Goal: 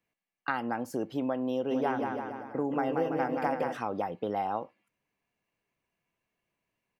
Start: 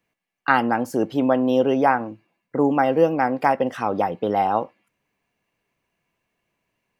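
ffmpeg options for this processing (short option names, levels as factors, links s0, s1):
-filter_complex "[0:a]acompressor=threshold=0.1:ratio=3,asplit=3[s0][s1][s2];[s0]afade=t=out:st=1.7:d=0.02[s3];[s1]aecho=1:1:180|333|463|573.6|667.6:0.631|0.398|0.251|0.158|0.1,afade=t=in:st=1.7:d=0.02,afade=t=out:st=3.76:d=0.02[s4];[s2]afade=t=in:st=3.76:d=0.02[s5];[s3][s4][s5]amix=inputs=3:normalize=0,volume=0.398"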